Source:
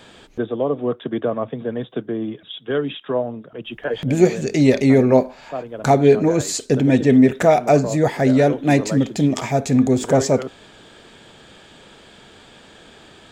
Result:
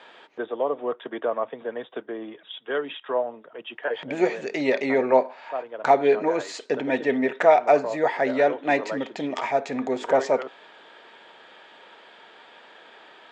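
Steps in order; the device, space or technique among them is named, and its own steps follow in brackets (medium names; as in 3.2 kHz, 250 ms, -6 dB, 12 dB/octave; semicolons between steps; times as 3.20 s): tin-can telephone (band-pass 560–2800 Hz; small resonant body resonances 930/1900 Hz, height 6 dB)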